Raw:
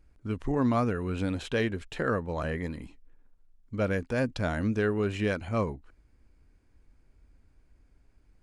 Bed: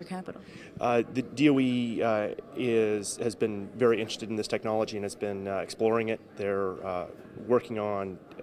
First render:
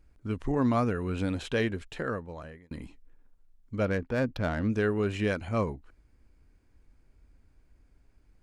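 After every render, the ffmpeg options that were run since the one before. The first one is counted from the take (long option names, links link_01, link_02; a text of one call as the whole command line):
ffmpeg -i in.wav -filter_complex "[0:a]asettb=1/sr,asplit=3[link_01][link_02][link_03];[link_01]atrim=end=3.854[link_04];[link_02]atrim=start=3.85:end=4.7,asetpts=PTS-STARTPTS,afade=type=in:duration=0.004:curve=qsin,afade=type=out:start_time=0.846:duration=0.004:curve=qsin,adynamicsmooth=sensitivity=4.5:basefreq=2300[link_05];[link_03]atrim=start=4.696[link_06];[link_04][link_05]acrossfade=duration=0.004:curve1=hsin:curve2=qsin[link_07];[link_07][link_06]acrossfade=duration=0.004:curve1=qsin:curve2=hsin,asplit=2[link_08][link_09];[link_08]atrim=end=2.71,asetpts=PTS-STARTPTS,afade=type=out:start_time=1.69:duration=1.02[link_10];[link_09]atrim=start=2.71,asetpts=PTS-STARTPTS,afade=type=in:duration=0.004:curve=hsin[link_11];[link_10][link_11]concat=n=2:v=0:a=1" out.wav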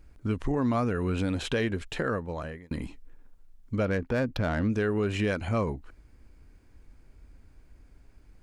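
ffmpeg -i in.wav -filter_complex "[0:a]asplit=2[link_01][link_02];[link_02]alimiter=limit=-23dB:level=0:latency=1,volume=2dB[link_03];[link_01][link_03]amix=inputs=2:normalize=0,acompressor=threshold=-27dB:ratio=2" out.wav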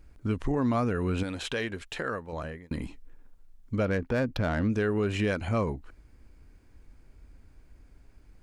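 ffmpeg -i in.wav -filter_complex "[0:a]asettb=1/sr,asplit=3[link_01][link_02][link_03];[link_01]atrim=end=1.234[link_04];[link_02]atrim=start=1.23:end=2.33,asetpts=PTS-STARTPTS,afade=type=in:duration=0.004:curve=qsin,afade=type=out:start_time=1.096:duration=0.004:curve=qsin,lowshelf=frequency=450:gain=-8.5[link_05];[link_03]atrim=start=2.326[link_06];[link_04][link_05]acrossfade=duration=0.004:curve1=hsin:curve2=qsin[link_07];[link_07][link_06]acrossfade=duration=0.004:curve1=qsin:curve2=hsin" out.wav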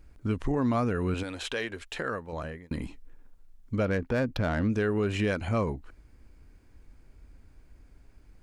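ffmpeg -i in.wav -filter_complex "[0:a]asettb=1/sr,asplit=3[link_01][link_02][link_03];[link_01]atrim=end=1.144[link_04];[link_02]atrim=start=1.14:end=1.95,asetpts=PTS-STARTPTS,afade=type=in:duration=0.004:curve=qsin,afade=type=out:start_time=0.806:duration=0.004:curve=qsin,equalizer=frequency=150:width=1.5:gain=-12.5[link_05];[link_03]atrim=start=1.946[link_06];[link_04][link_05]acrossfade=duration=0.004:curve1=hsin:curve2=qsin[link_07];[link_07][link_06]acrossfade=duration=0.004:curve1=qsin:curve2=hsin" out.wav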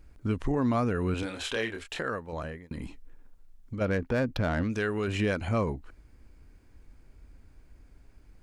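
ffmpeg -i in.wav -filter_complex "[0:a]asettb=1/sr,asplit=3[link_01][link_02][link_03];[link_01]atrim=end=1.204[link_04];[link_02]atrim=start=1.2:end=1.99,asetpts=PTS-STARTPTS,afade=type=in:duration=0.004:curve=qsin,afade=type=out:start_time=0.786:duration=0.004:curve=qsin,asplit=2[link_05][link_06];[link_06]adelay=27,volume=-4.5dB[link_07];[link_05][link_07]amix=inputs=2:normalize=0,atrim=end_sample=34839[link_08];[link_03]atrim=start=1.986[link_09];[link_04][link_08]acrossfade=duration=0.004:curve1=hsin:curve2=qsin[link_10];[link_10][link_09]acrossfade=duration=0.004:curve1=qsin:curve2=hsin,asplit=3[link_11][link_12][link_13];[link_11]afade=type=out:start_time=2.55:duration=0.02[link_14];[link_12]acompressor=threshold=-32dB:ratio=6:attack=3.2:release=140:knee=1:detection=peak,afade=type=in:start_time=2.55:duration=0.02,afade=type=out:start_time=3.8:duration=0.02[link_15];[link_13]afade=type=in:start_time=3.8:duration=0.02[link_16];[link_14][link_15][link_16]amix=inputs=3:normalize=0,asettb=1/sr,asplit=3[link_17][link_18][link_19];[link_17]atrim=end=4.634[link_20];[link_18]atrim=start=4.63:end=5.08,asetpts=PTS-STARTPTS,afade=type=in:duration=0.004:curve=qsin,afade=type=out:start_time=0.446:duration=0.004:curve=qsin,tiltshelf=frequency=970:gain=-4.5[link_21];[link_19]atrim=start=5.076[link_22];[link_20][link_21]acrossfade=duration=0.004:curve1=hsin:curve2=qsin[link_23];[link_23][link_22]acrossfade=duration=0.004:curve1=qsin:curve2=hsin" out.wav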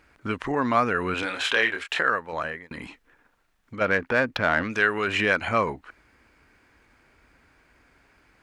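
ffmpeg -i in.wav -af "highpass=frequency=200:poles=1,equalizer=frequency=1700:width=0.46:gain=13" out.wav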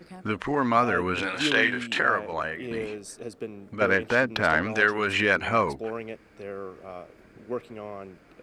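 ffmpeg -i in.wav -i bed.wav -filter_complex "[1:a]volume=-7.5dB[link_01];[0:a][link_01]amix=inputs=2:normalize=0" out.wav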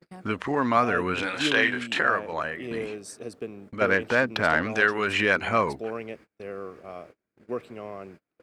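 ffmpeg -i in.wav -af "highpass=72,agate=range=-32dB:threshold=-46dB:ratio=16:detection=peak" out.wav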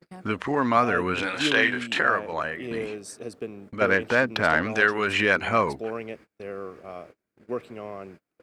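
ffmpeg -i in.wav -af "volume=1dB" out.wav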